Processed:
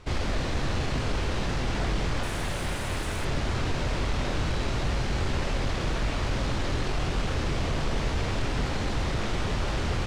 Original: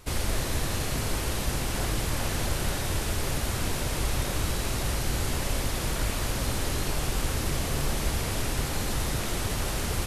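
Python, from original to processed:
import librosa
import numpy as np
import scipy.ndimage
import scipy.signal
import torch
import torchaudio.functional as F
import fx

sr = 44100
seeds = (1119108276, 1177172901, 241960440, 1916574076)

y = fx.tracing_dist(x, sr, depth_ms=0.022)
y = fx.high_shelf_res(y, sr, hz=7300.0, db=13.0, q=1.5, at=(2.23, 3.25))
y = 10.0 ** (-23.0 / 20.0) * (np.abs((y / 10.0 ** (-23.0 / 20.0) + 3.0) % 4.0 - 2.0) - 1.0)
y = fx.air_absorb(y, sr, metres=130.0)
y = fx.doubler(y, sr, ms=24.0, db=-11.0)
y = y * librosa.db_to_amplitude(2.5)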